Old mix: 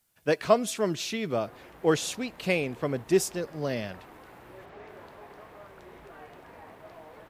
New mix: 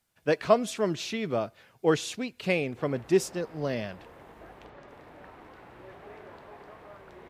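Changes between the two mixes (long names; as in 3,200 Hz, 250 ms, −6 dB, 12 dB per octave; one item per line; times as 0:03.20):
background: entry +1.30 s
master: add high-shelf EQ 7,800 Hz −10 dB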